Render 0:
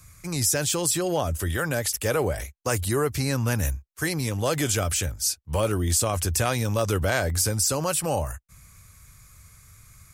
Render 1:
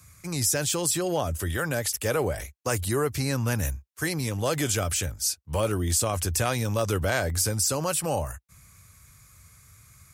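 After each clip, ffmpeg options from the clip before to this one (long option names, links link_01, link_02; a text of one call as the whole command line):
ffmpeg -i in.wav -af "highpass=59,volume=-1.5dB" out.wav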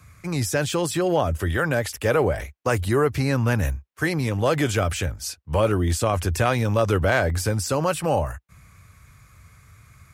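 ffmpeg -i in.wav -af "bass=frequency=250:gain=-1,treble=frequency=4000:gain=-13,volume=6dB" out.wav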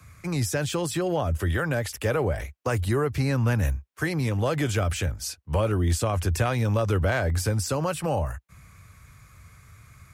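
ffmpeg -i in.wav -filter_complex "[0:a]acrossover=split=160[link_01][link_02];[link_02]acompressor=threshold=-32dB:ratio=1.5[link_03];[link_01][link_03]amix=inputs=2:normalize=0" out.wav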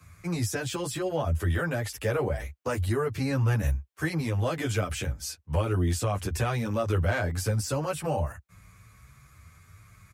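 ffmpeg -i in.wav -filter_complex "[0:a]asplit=2[link_01][link_02];[link_02]adelay=9.8,afreqshift=0.73[link_03];[link_01][link_03]amix=inputs=2:normalize=1" out.wav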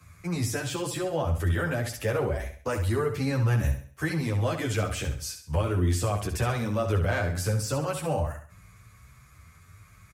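ffmpeg -i in.wav -af "aecho=1:1:67|134|201|268:0.376|0.143|0.0543|0.0206" out.wav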